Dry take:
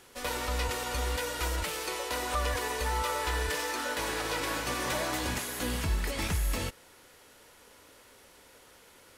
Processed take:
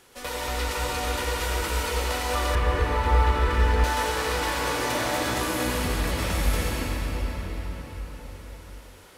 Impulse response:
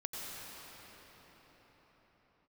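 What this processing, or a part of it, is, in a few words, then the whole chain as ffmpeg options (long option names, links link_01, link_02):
cathedral: -filter_complex "[1:a]atrim=start_sample=2205[link_01];[0:a][link_01]afir=irnorm=-1:irlink=0,asettb=1/sr,asplit=3[link_02][link_03][link_04];[link_02]atrim=end=2.554[link_05];[link_03]atrim=start=2.55:end=3.84,asetpts=PTS-STARTPTS,afade=type=in:duration=0.004:curve=qsin,afade=type=out:start_time=1.286:duration=0.004:curve=qsin,bass=frequency=250:gain=11,treble=frequency=4000:gain=-13[link_06];[link_04]atrim=start=3.836[link_07];[link_05][link_06]acrossfade=duration=0.004:curve1=hsin:curve2=qsin[link_08];[link_08][link_07]acrossfade=duration=0.004:curve1=qsin:curve2=hsin,volume=4dB"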